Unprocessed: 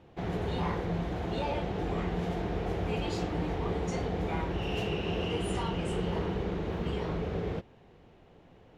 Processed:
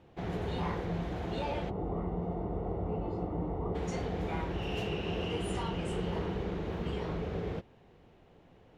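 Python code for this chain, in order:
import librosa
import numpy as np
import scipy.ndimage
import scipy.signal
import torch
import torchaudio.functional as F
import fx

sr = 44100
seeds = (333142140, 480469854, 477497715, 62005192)

y = fx.savgol(x, sr, points=65, at=(1.69, 3.74), fade=0.02)
y = y * 10.0 ** (-2.5 / 20.0)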